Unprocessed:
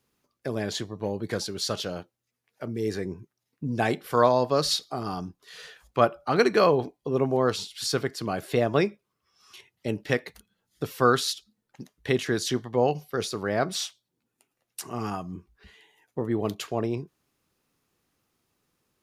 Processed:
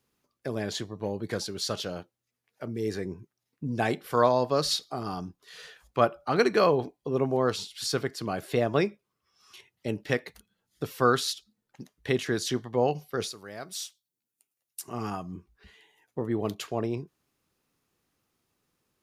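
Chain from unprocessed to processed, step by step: 13.32–14.88 s: pre-emphasis filter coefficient 0.8; trim -2 dB

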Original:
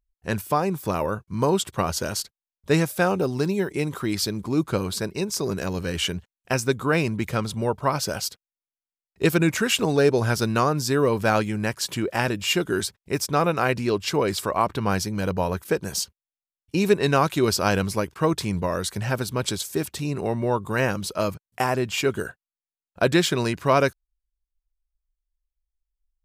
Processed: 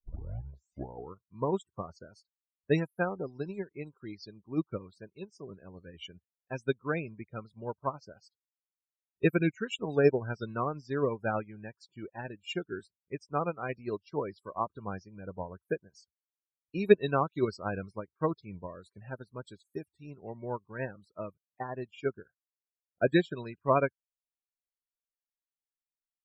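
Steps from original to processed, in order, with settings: tape start-up on the opening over 1.26 s; loudest bins only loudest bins 32; upward expansion 2.5:1, over -39 dBFS

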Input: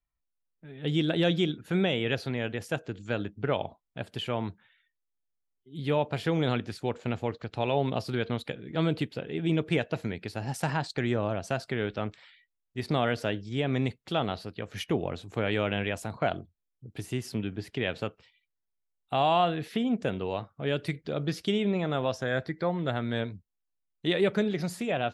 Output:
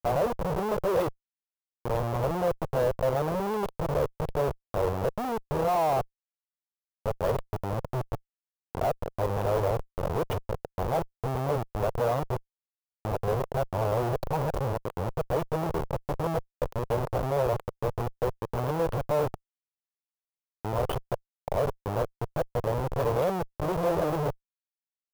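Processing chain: reverse the whole clip; Schmitt trigger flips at -32 dBFS; graphic EQ 125/250/500/1000/2000/4000/8000 Hz +3/-7/+11/+7/-5/-5/-6 dB

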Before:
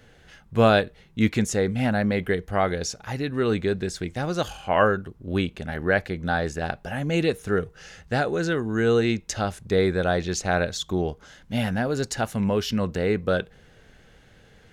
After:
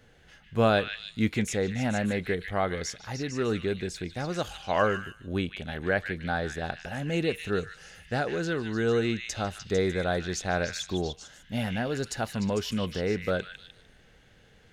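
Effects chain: repeats whose band climbs or falls 150 ms, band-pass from 2.5 kHz, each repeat 0.7 oct, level -2 dB; trim -5 dB

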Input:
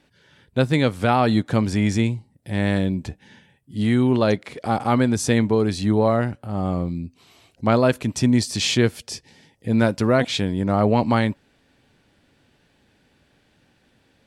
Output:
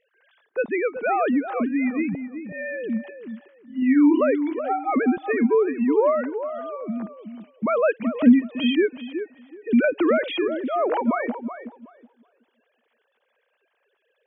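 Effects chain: formants replaced by sine waves; 3.79–4.21 s: doubling 31 ms -5 dB; filtered feedback delay 374 ms, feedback 21%, low-pass 1.4 kHz, level -9 dB; 9.84–10.48 s: three bands compressed up and down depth 100%; trim -2.5 dB

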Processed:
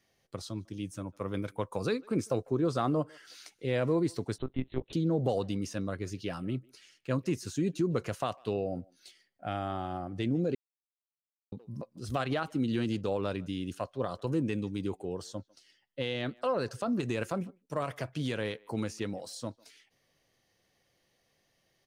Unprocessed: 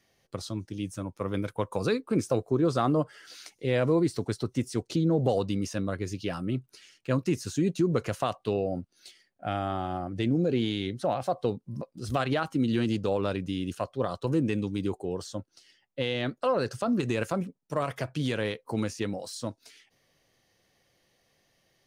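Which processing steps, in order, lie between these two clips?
speakerphone echo 150 ms, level -25 dB; 4.38–4.93 s: monotone LPC vocoder at 8 kHz 130 Hz; 10.55–11.52 s: mute; trim -4 dB

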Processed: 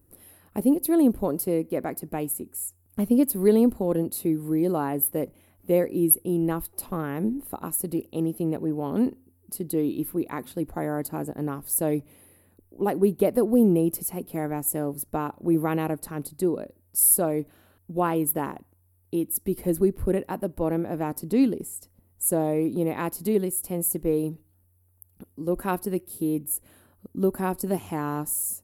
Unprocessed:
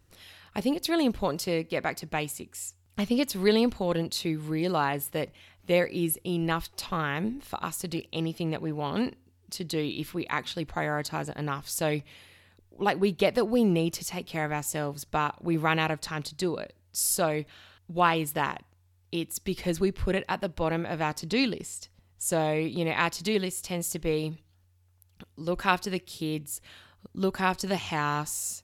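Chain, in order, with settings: FFT filter 150 Hz 0 dB, 280 Hz +8 dB, 3.5 kHz -16 dB, 6.5 kHz -11 dB, 11 kHz +12 dB

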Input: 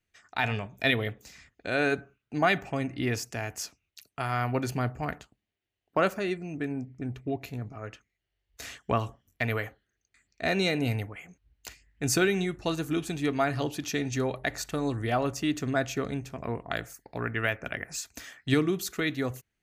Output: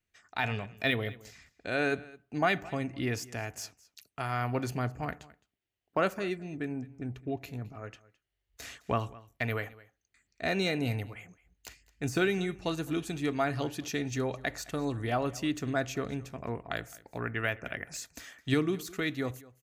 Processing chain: de-esser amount 65%; delay 213 ms -21 dB; trim -3 dB

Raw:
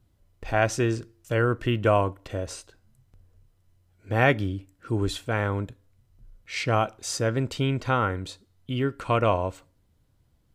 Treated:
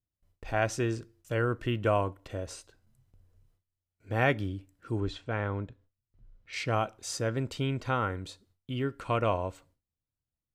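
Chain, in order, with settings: gate with hold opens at -52 dBFS; 5.00–6.53 s: distance through air 140 m; trim -5.5 dB

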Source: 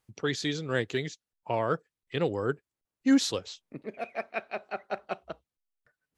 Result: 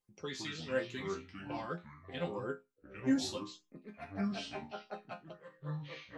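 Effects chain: chord resonator F3 minor, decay 0.22 s; LFO notch sine 1.7 Hz 380–4200 Hz; ever faster or slower copies 85 ms, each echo -5 st, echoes 2, each echo -6 dB; trim +5.5 dB

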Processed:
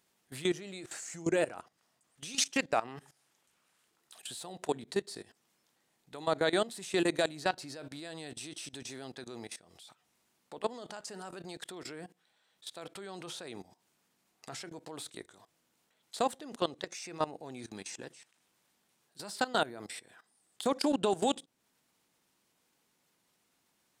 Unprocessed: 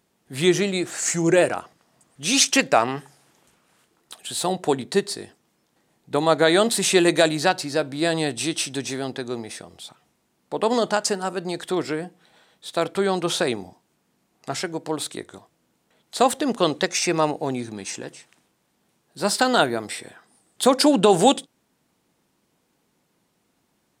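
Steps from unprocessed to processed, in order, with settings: level held to a coarse grid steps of 18 dB; tape noise reduction on one side only encoder only; trim -9 dB

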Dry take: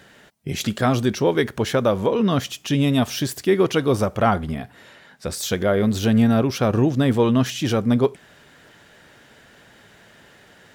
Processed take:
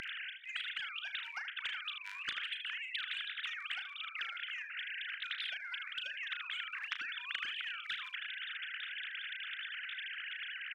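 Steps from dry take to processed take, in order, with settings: formants replaced by sine waves; Chebyshev high-pass 1.5 kHz, order 8; compression 10:1, threshold -47 dBFS, peak gain reduction 21.5 dB; early reflections 35 ms -11 dB, 77 ms -15.5 dB; spectrum-flattening compressor 4:1; trim +10.5 dB

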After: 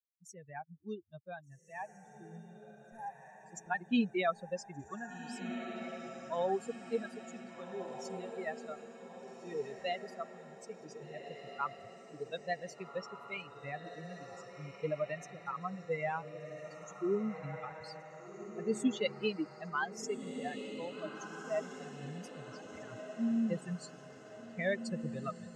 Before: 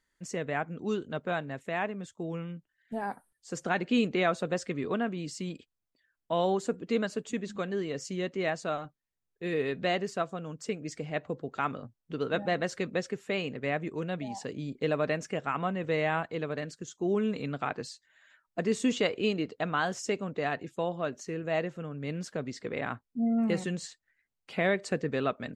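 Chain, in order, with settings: expander on every frequency bin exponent 3; echo that smears into a reverb 1594 ms, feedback 53%, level -8.5 dB

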